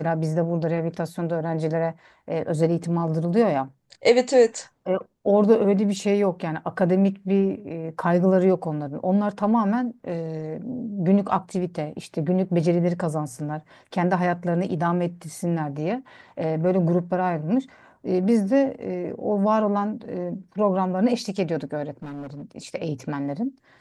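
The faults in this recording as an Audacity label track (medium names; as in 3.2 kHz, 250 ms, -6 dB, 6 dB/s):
22.020000	22.430000	clipped -31.5 dBFS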